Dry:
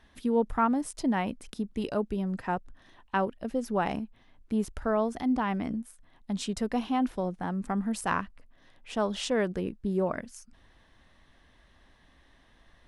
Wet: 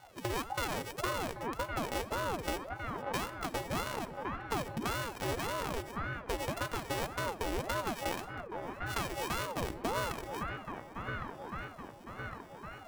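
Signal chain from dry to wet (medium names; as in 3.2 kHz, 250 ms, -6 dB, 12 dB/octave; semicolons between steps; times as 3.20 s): sorted samples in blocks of 64 samples; on a send: feedback echo behind a band-pass 1109 ms, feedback 54%, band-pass 820 Hz, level -9 dB; on the sum: compression 6:1, threshold -36 dBFS, peak gain reduction 15 dB; simulated room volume 2800 m³, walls furnished, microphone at 1 m; ring modulator with a swept carrier 470 Hz, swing 75%, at 1.8 Hz; trim +5.5 dB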